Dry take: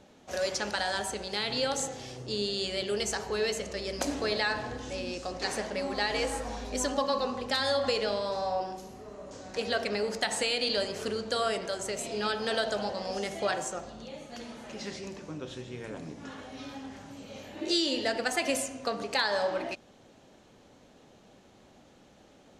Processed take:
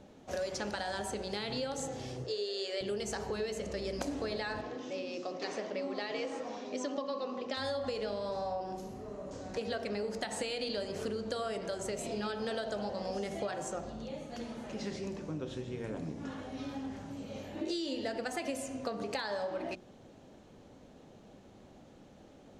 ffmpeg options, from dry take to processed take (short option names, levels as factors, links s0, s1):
-filter_complex "[0:a]asettb=1/sr,asplit=3[s0][s1][s2];[s0]atrim=end=2.244[s3];[s1]atrim=start=2.24:end=2.81,asetpts=PTS-STARTPTS,afade=t=in:d=0.004:c=qsin,afade=t=out:st=0.566:d=0.004:c=qsin,highpass=f=410:w=0.5412,highpass=f=410:w=1.3066,equalizer=f=460:t=q:w=4:g=7,equalizer=f=890:t=q:w=4:g=-4,equalizer=f=1800:t=q:w=4:g=5,equalizer=f=5000:t=q:w=4:g=3,lowpass=f=8400:w=0.5412,lowpass=f=8400:w=1.3066[s4];[s2]atrim=start=2.806[s5];[s3][s4]acrossfade=d=0.004:c1=hsin:c2=qsin[s6];[s6][s5]acrossfade=d=0.004:c1=qsin:c2=hsin,asettb=1/sr,asplit=3[s7][s8][s9];[s7]atrim=end=4.614[s10];[s8]atrim=start=4.61:end=7.57,asetpts=PTS-STARTPTS,afade=t=in:d=0.004:c=qsin,afade=t=out:st=2.956:d=0.004:c=qsin,highpass=f=200:w=0.5412,highpass=f=200:w=1.3066,equalizer=f=220:t=q:w=4:g=-7,equalizer=f=470:t=q:w=4:g=-3,equalizer=f=840:t=q:w=4:g=-6,equalizer=f=1600:t=q:w=4:g=-6,equalizer=f=4300:t=q:w=4:g=-4,lowpass=f=6000:w=0.5412,lowpass=f=6000:w=1.3066[s11];[s9]atrim=start=7.566[s12];[s10][s11]acrossfade=d=0.004:c1=hsin:c2=qsin[s13];[s13][s12]acrossfade=d=0.004:c1=qsin:c2=hsin,tiltshelf=f=700:g=4.5,bandreject=f=60:t=h:w=6,bandreject=f=120:t=h:w=6,bandreject=f=180:t=h:w=6,bandreject=f=240:t=h:w=6,bandreject=f=300:t=h:w=6,bandreject=f=360:t=h:w=6,bandreject=f=420:t=h:w=6,acompressor=threshold=0.0224:ratio=6"